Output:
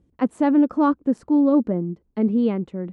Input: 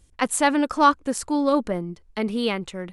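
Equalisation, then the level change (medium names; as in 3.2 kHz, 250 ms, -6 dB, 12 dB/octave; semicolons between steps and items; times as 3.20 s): band-pass filter 240 Hz, Q 1.2; +7.0 dB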